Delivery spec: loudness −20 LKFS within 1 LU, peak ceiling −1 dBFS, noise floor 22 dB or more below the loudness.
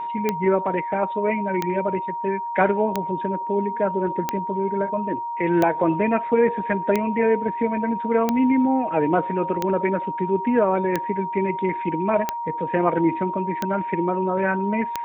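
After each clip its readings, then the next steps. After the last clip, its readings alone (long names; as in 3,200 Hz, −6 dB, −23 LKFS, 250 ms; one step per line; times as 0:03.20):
number of clicks 12; interfering tone 940 Hz; level of the tone −26 dBFS; integrated loudness −22.5 LKFS; sample peak −5.5 dBFS; target loudness −20.0 LKFS
→ click removal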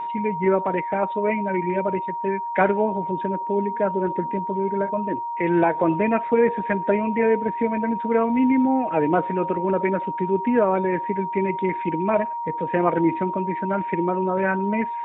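number of clicks 0; interfering tone 940 Hz; level of the tone −26 dBFS
→ notch filter 940 Hz, Q 30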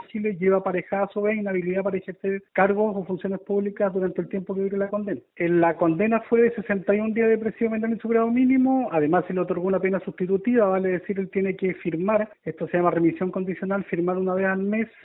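interfering tone none found; integrated loudness −24.0 LKFS; sample peak −7.0 dBFS; target loudness −20.0 LKFS
→ level +4 dB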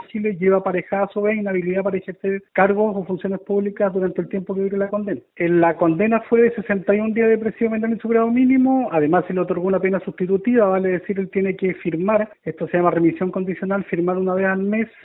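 integrated loudness −20.0 LKFS; sample peak −3.0 dBFS; background noise floor −47 dBFS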